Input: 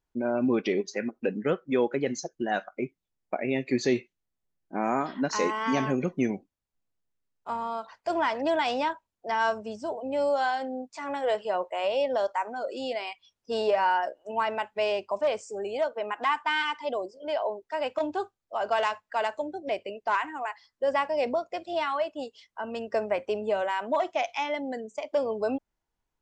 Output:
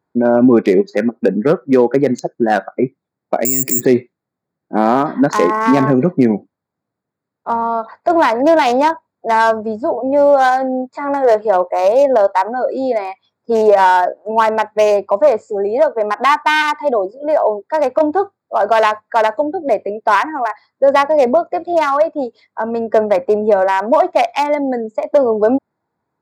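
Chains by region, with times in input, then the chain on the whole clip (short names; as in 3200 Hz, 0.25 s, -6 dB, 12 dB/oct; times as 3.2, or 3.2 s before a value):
3.45–3.85 resonant low shelf 400 Hz +7.5 dB, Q 1.5 + careless resampling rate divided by 6×, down filtered, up zero stuff
whole clip: Wiener smoothing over 15 samples; HPF 110 Hz 24 dB/oct; maximiser +17 dB; gain -1 dB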